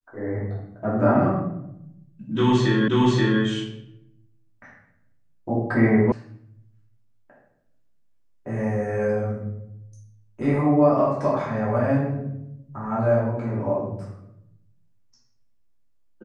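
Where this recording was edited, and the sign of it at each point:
0:02.88: the same again, the last 0.53 s
0:06.12: cut off before it has died away

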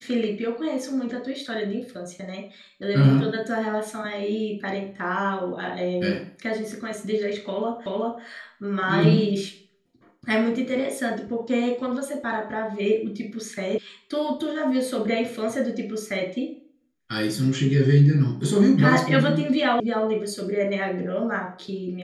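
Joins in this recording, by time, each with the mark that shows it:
0:07.86: the same again, the last 0.38 s
0:13.78: cut off before it has died away
0:19.80: cut off before it has died away

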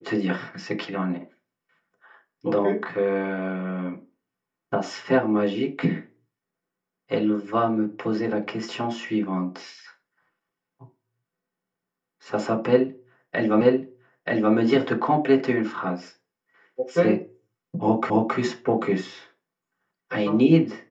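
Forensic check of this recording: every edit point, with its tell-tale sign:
0:13.61: the same again, the last 0.93 s
0:18.10: the same again, the last 0.27 s

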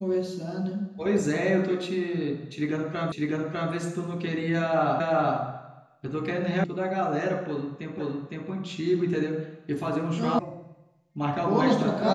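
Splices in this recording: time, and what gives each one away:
0:03.12: the same again, the last 0.6 s
0:05.00: the same again, the last 0.38 s
0:06.64: cut off before it has died away
0:07.99: the same again, the last 0.51 s
0:10.39: cut off before it has died away

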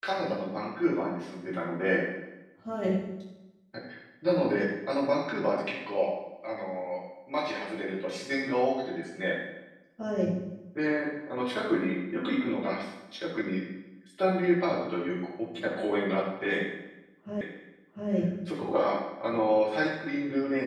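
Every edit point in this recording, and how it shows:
0:17.41: the same again, the last 0.7 s

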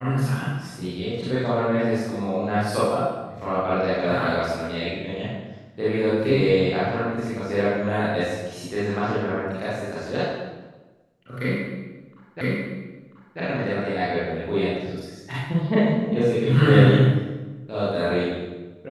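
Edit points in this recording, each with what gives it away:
0:12.41: the same again, the last 0.99 s

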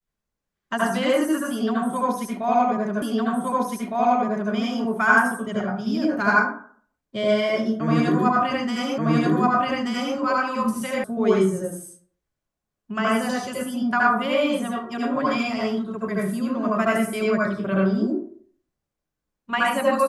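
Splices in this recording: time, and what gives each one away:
0:03.02: the same again, the last 1.51 s
0:08.98: the same again, the last 1.18 s
0:11.04: cut off before it has died away

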